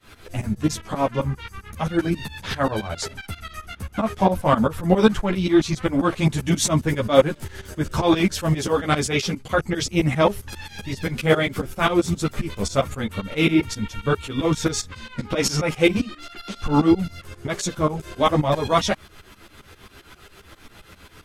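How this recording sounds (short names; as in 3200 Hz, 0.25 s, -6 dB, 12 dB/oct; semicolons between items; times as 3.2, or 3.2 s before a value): tremolo saw up 7.5 Hz, depth 95%; a shimmering, thickened sound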